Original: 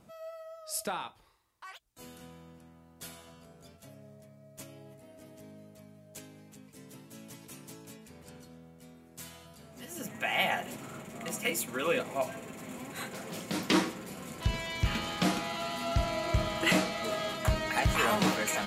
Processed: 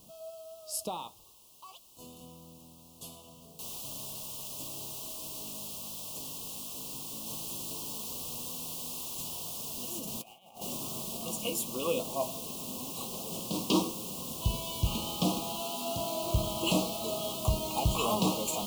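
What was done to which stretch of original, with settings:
3.59 s: noise floor step -58 dB -41 dB
7.26–11.17 s: compressor with a negative ratio -38 dBFS, ratio -0.5
15.60–16.23 s: high-pass 200 Hz
whole clip: elliptic band-stop 1.1–2.8 kHz, stop band 80 dB

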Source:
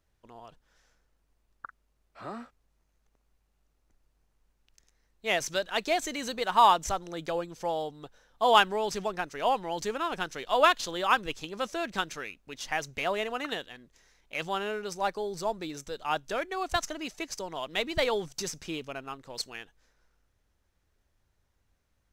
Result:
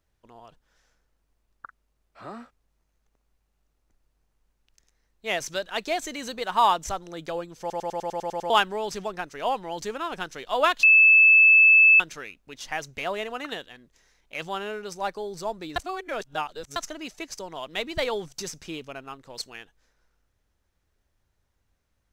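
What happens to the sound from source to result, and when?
7.60 s: stutter in place 0.10 s, 9 plays
10.83–12.00 s: bleep 2.62 kHz -11.5 dBFS
15.76–16.76 s: reverse

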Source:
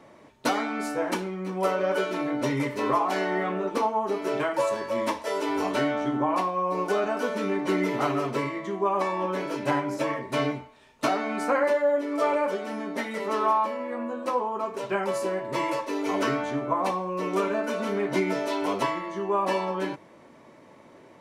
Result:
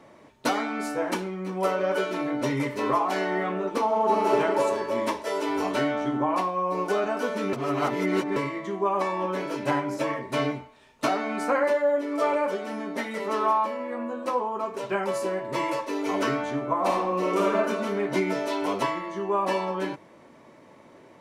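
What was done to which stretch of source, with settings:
3.84–4.32 s: reverb throw, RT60 2.6 s, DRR -3.5 dB
7.53–8.36 s: reverse
16.78–17.56 s: reverb throw, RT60 1 s, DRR -1.5 dB

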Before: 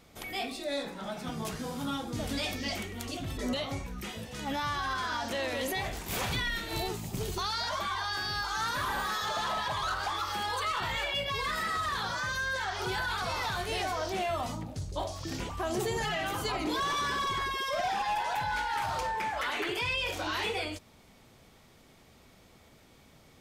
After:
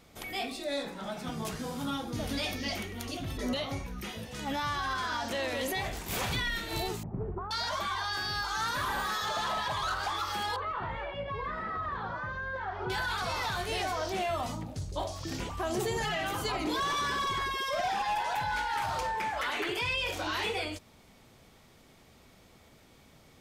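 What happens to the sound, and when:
1.90–4.30 s: band-stop 7.7 kHz, Q 6.5
7.03–7.51 s: Bessel low-pass 900 Hz, order 6
10.56–12.90 s: low-pass 1.3 kHz

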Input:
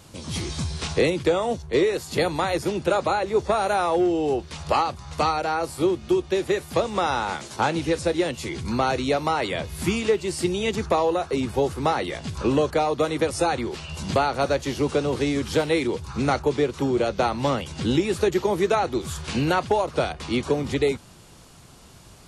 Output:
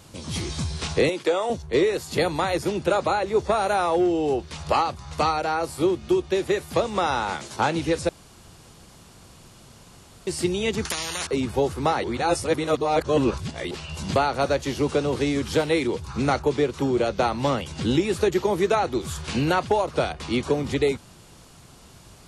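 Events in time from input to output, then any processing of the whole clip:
1.09–1.50 s: high-pass 360 Hz
8.09–10.27 s: room tone
10.85–11.27 s: spectrum-flattening compressor 10:1
12.04–13.71 s: reverse

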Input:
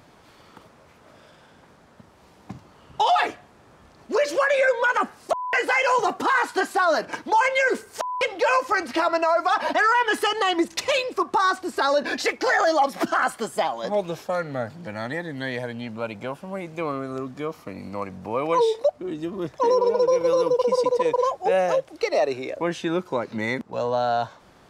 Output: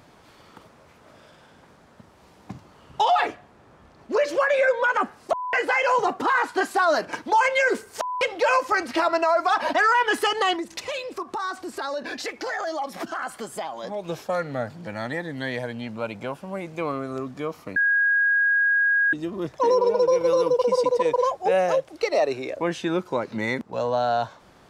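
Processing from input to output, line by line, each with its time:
3.05–6.61 s: treble shelf 3.9 kHz -7 dB
10.56–14.09 s: compression 2:1, threshold -33 dBFS
17.76–19.13 s: bleep 1.64 kHz -17 dBFS

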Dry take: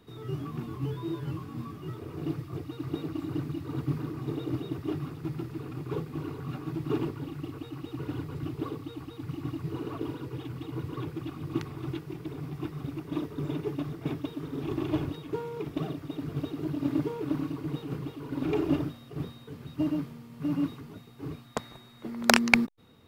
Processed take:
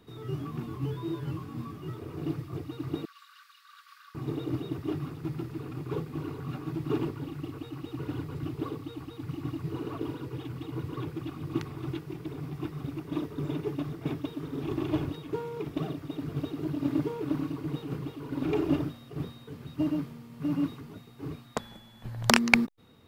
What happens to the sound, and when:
3.05–4.15 s: rippled Chebyshev high-pass 1.1 kHz, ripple 6 dB
21.59–22.30 s: frequency shift -350 Hz

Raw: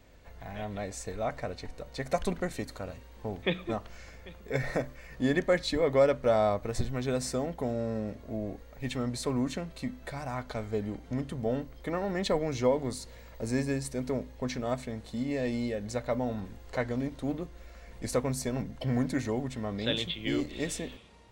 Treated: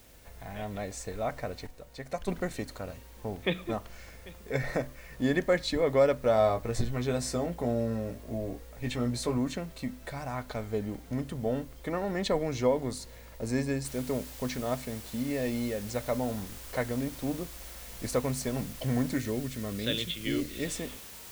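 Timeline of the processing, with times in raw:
1.67–2.28 s: gain -6 dB
6.36–9.38 s: doubling 17 ms -6 dB
13.85 s: noise floor step -60 dB -47 dB
19.16–20.65 s: peaking EQ 840 Hz -11 dB 0.65 oct

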